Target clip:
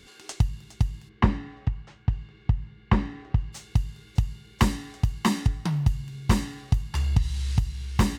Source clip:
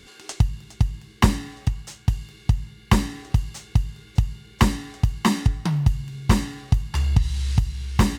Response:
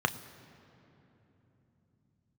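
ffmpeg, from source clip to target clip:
-filter_complex "[0:a]asplit=3[link_01][link_02][link_03];[link_01]afade=type=out:start_time=1.08:duration=0.02[link_04];[link_02]lowpass=2200,afade=type=in:start_time=1.08:duration=0.02,afade=type=out:start_time=3.52:duration=0.02[link_05];[link_03]afade=type=in:start_time=3.52:duration=0.02[link_06];[link_04][link_05][link_06]amix=inputs=3:normalize=0,volume=-3.5dB"

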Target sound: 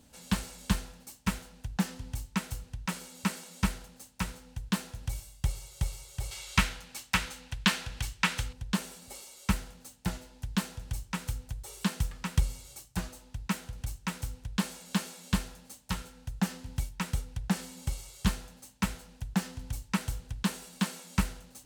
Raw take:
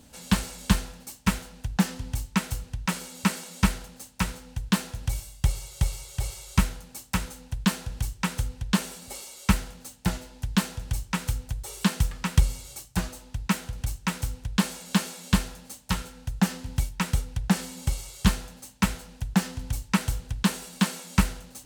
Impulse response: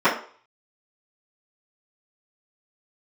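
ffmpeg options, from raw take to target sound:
-filter_complex "[0:a]asettb=1/sr,asplit=3[link_01][link_02][link_03];[link_01]atrim=end=6.314[link_04];[link_02]atrim=start=6.31:end=8.53,asetpts=PTS-STARTPTS,afade=type=in:duration=0.004:curve=qsin,afade=type=out:start_time=2.216:duration=0.004:curve=qsin,equalizer=frequency=2500:width_type=o:width=2.8:gain=12.5[link_05];[link_03]atrim=start=8.526[link_06];[link_04][link_05]acrossfade=duration=0.004:curve1=hsin:curve2=qsin[link_07];[link_07][link_06]acrossfade=duration=0.004:curve1=qsin:curve2=hsin,volume=-6.5dB"

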